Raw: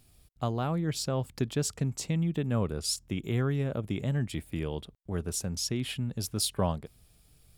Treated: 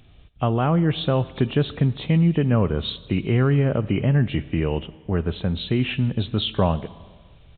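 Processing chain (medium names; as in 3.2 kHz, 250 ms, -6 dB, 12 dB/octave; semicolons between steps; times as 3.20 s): knee-point frequency compression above 2.2 kHz 1.5:1; in parallel at -1 dB: peak limiter -23 dBFS, peak gain reduction 8.5 dB; on the sum: Schroeder reverb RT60 1.6 s, combs from 28 ms, DRR 16.5 dB; resampled via 8 kHz; trim +5.5 dB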